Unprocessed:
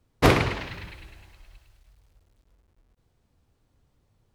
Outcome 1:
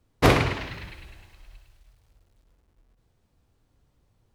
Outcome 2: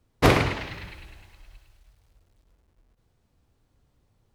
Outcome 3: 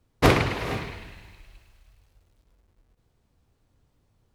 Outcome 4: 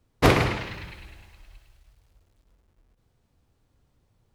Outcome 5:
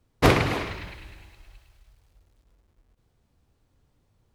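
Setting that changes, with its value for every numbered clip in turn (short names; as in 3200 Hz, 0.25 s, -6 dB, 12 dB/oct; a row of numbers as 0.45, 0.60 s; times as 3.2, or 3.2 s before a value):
non-linear reverb, gate: 80, 120, 500, 190, 320 ms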